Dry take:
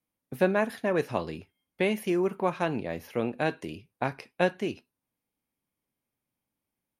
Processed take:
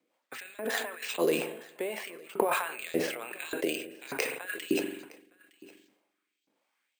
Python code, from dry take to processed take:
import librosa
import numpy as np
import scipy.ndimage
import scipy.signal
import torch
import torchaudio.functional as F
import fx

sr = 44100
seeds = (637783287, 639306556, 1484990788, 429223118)

y = fx.over_compress(x, sr, threshold_db=-36.0, ratio=-1.0)
y = fx.filter_lfo_highpass(y, sr, shape='saw_up', hz=1.7, low_hz=300.0, high_hz=4200.0, q=1.9)
y = y + 10.0 ** (-22.5 / 20.0) * np.pad(y, (int(913 * sr / 1000.0), 0))[:len(y)]
y = fx.rev_spring(y, sr, rt60_s=1.4, pass_ms=(43,), chirp_ms=65, drr_db=16.0)
y = fx.rotary_switch(y, sr, hz=5.0, then_hz=1.2, switch_at_s=0.47)
y = np.repeat(scipy.signal.resample_poly(y, 1, 4), 4)[:len(y)]
y = fx.sustainer(y, sr, db_per_s=74.0)
y = F.gain(torch.from_numpy(y), 6.5).numpy()